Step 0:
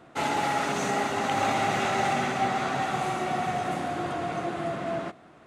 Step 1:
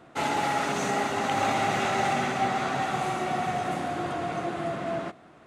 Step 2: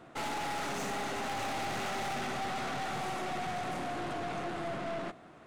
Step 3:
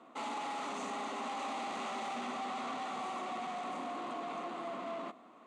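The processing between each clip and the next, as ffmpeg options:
-af anull
-af "aeval=exprs='(tanh(50.1*val(0)+0.4)-tanh(0.4))/50.1':c=same"
-af "highpass=f=230:w=0.5412,highpass=f=230:w=1.3066,equalizer=f=240:t=q:w=4:g=7,equalizer=f=360:t=q:w=4:g=-4,equalizer=f=1.1k:t=q:w=4:g=9,equalizer=f=1.6k:t=q:w=4:g=-9,equalizer=f=5.3k:t=q:w=4:g=-8,lowpass=f=8.4k:w=0.5412,lowpass=f=8.4k:w=1.3066,volume=-4dB"

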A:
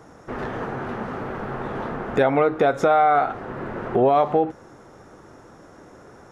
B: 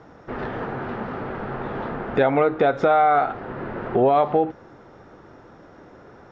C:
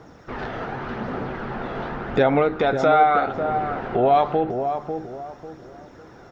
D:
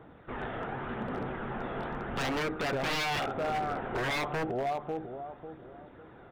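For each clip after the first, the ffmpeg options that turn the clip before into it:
-af "lowpass=f=4.7k:w=0.5412,lowpass=f=4.7k:w=1.3066,bandreject=f=1.1k:w=30"
-filter_complex "[0:a]crystalizer=i=3:c=0,flanger=delay=0.1:depth=1.4:regen=65:speed=0.87:shape=sinusoidal,asplit=2[a][b];[b]adelay=546,lowpass=f=930:p=1,volume=-6dB,asplit=2[c][d];[d]adelay=546,lowpass=f=930:p=1,volume=0.36,asplit=2[e][f];[f]adelay=546,lowpass=f=930:p=1,volume=0.36,asplit=2[g][h];[h]adelay=546,lowpass=f=930:p=1,volume=0.36[i];[c][e][g][i]amix=inputs=4:normalize=0[j];[a][j]amix=inputs=2:normalize=0,volume=3dB"
-af "aresample=8000,aresample=44100,aeval=exprs='0.106*(abs(mod(val(0)/0.106+3,4)-2)-1)':c=same,volume=-6.5dB"

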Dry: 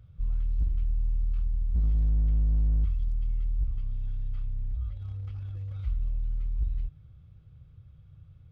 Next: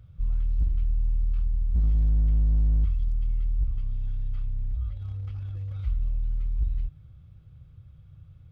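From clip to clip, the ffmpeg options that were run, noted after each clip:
-af "bandreject=f=440:w=14,volume=2.5dB"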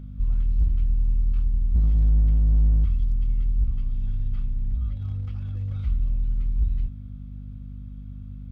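-af "aeval=exprs='val(0)+0.0112*(sin(2*PI*50*n/s)+sin(2*PI*2*50*n/s)/2+sin(2*PI*3*50*n/s)/3+sin(2*PI*4*50*n/s)/4+sin(2*PI*5*50*n/s)/5)':c=same,volume=3dB"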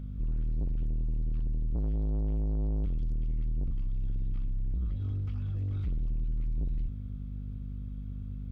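-af "asoftclip=type=tanh:threshold=-27.5dB"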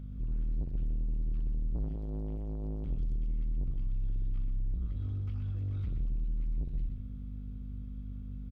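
-af "aecho=1:1:124:0.422,volume=-3.5dB"

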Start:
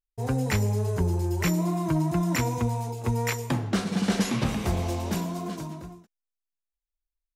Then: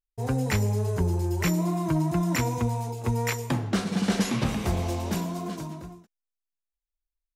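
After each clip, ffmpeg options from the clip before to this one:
-af anull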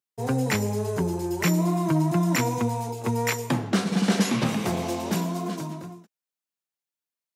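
-af "highpass=f=130:w=0.5412,highpass=f=130:w=1.3066,acontrast=73,volume=-3.5dB"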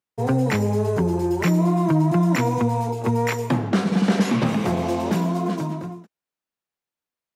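-filter_complex "[0:a]asplit=2[a][b];[b]alimiter=limit=-21dB:level=0:latency=1:release=125,volume=1.5dB[c];[a][c]amix=inputs=2:normalize=0,highshelf=f=3.4k:g=-11"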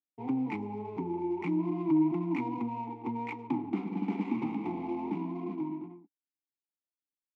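-filter_complex "[0:a]adynamicsmooth=sensitivity=4:basefreq=590,asplit=3[a][b][c];[a]bandpass=f=300:t=q:w=8,volume=0dB[d];[b]bandpass=f=870:t=q:w=8,volume=-6dB[e];[c]bandpass=f=2.24k:t=q:w=8,volume=-9dB[f];[d][e][f]amix=inputs=3:normalize=0"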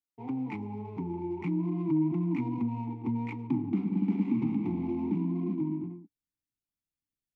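-filter_complex "[0:a]asubboost=boost=9:cutoff=210,asplit=2[a][b];[b]alimiter=limit=-23dB:level=0:latency=1:release=134,volume=-2dB[c];[a][c]amix=inputs=2:normalize=0,volume=-7.5dB"

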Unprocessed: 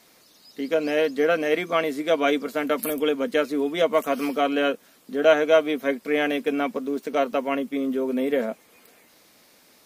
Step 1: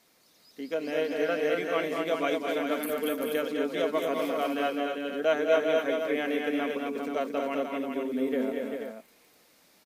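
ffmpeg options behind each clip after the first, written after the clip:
-af "aecho=1:1:201|232|392|483:0.422|0.596|0.501|0.422,volume=-8.5dB"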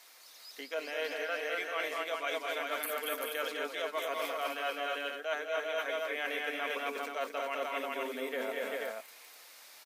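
-af "highpass=830,areverse,acompressor=threshold=-41dB:ratio=6,areverse,volume=8.5dB"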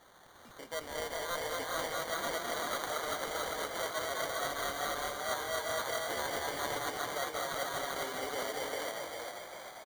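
-filter_complex "[0:a]acrusher=samples=17:mix=1:aa=0.000001,lowshelf=f=410:g=-9.5,asplit=2[a][b];[b]asplit=8[c][d][e][f][g][h][i][j];[c]adelay=398,afreqshift=39,volume=-4dB[k];[d]adelay=796,afreqshift=78,volume=-9dB[l];[e]adelay=1194,afreqshift=117,volume=-14.1dB[m];[f]adelay=1592,afreqshift=156,volume=-19.1dB[n];[g]adelay=1990,afreqshift=195,volume=-24.1dB[o];[h]adelay=2388,afreqshift=234,volume=-29.2dB[p];[i]adelay=2786,afreqshift=273,volume=-34.2dB[q];[j]adelay=3184,afreqshift=312,volume=-39.3dB[r];[k][l][m][n][o][p][q][r]amix=inputs=8:normalize=0[s];[a][s]amix=inputs=2:normalize=0"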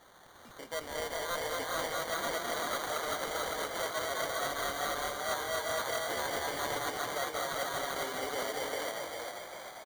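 -af "volume=27dB,asoftclip=hard,volume=-27dB,volume=1.5dB"

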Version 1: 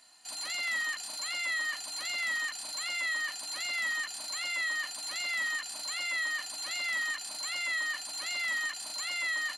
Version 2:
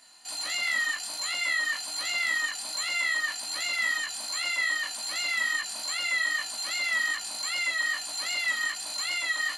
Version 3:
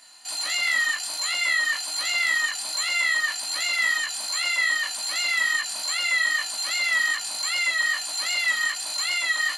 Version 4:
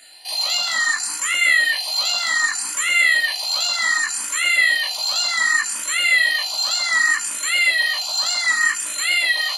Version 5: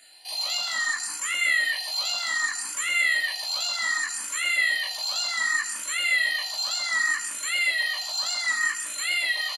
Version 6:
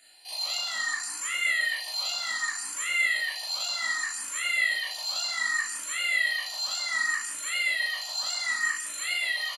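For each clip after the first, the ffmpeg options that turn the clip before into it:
-af "flanger=delay=19:depth=2.7:speed=2.5,volume=7.5dB"
-af "lowshelf=f=430:g=-7.5,volume=5dB"
-filter_complex "[0:a]asplit=2[a][b];[b]afreqshift=0.66[c];[a][c]amix=inputs=2:normalize=1,volume=8.5dB"
-af "aecho=1:1:149:0.168,volume=-7dB"
-filter_complex "[0:a]asplit=2[a][b];[b]adelay=38,volume=-2.5dB[c];[a][c]amix=inputs=2:normalize=0,volume=-5dB"

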